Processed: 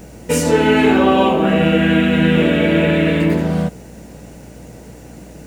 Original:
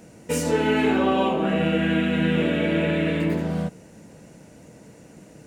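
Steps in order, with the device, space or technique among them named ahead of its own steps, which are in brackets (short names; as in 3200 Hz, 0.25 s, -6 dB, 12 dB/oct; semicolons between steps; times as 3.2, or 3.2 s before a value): video cassette with head-switching buzz (buzz 60 Hz, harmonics 14, -49 dBFS -5 dB/oct; white noise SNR 40 dB); gain +8 dB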